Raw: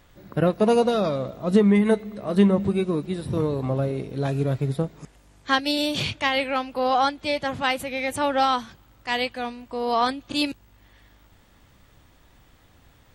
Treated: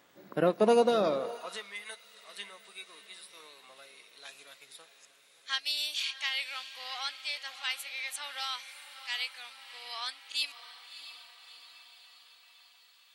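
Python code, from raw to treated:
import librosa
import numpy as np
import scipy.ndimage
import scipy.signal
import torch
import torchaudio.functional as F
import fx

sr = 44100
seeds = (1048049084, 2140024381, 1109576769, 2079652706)

p1 = fx.low_shelf(x, sr, hz=85.0, db=-7.5)
p2 = p1 + fx.echo_diffused(p1, sr, ms=646, feedback_pct=59, wet_db=-12.5, dry=0)
p3 = fx.filter_sweep_highpass(p2, sr, from_hz=250.0, to_hz=2600.0, start_s=1.08, end_s=1.67, q=0.73)
y = F.gain(torch.from_numpy(p3), -3.5).numpy()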